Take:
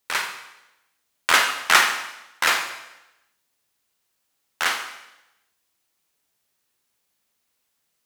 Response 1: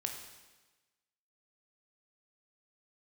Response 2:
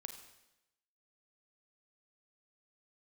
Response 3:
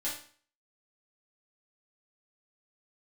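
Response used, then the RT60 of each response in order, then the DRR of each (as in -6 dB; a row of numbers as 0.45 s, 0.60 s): 2; 1.2 s, 0.90 s, 0.45 s; 3.0 dB, 5.5 dB, -8.0 dB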